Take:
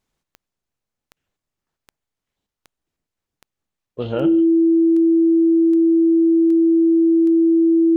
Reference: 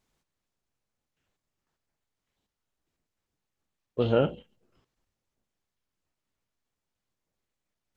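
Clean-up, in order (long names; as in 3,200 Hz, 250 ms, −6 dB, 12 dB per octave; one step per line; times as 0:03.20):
click removal
notch filter 330 Hz, Q 30
echo removal 150 ms −22.5 dB
level correction +9.5 dB, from 0:04.80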